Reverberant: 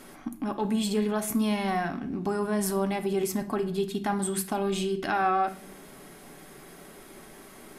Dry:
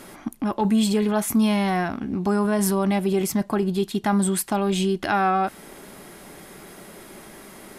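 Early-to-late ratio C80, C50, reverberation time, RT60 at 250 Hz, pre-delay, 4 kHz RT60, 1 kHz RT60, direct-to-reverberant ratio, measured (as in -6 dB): 17.0 dB, 13.0 dB, 0.60 s, 1.0 s, 3 ms, 0.45 s, 0.50 s, 6.0 dB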